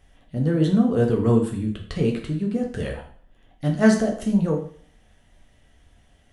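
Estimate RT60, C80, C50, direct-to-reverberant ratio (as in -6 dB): 0.50 s, 11.5 dB, 8.0 dB, 0.5 dB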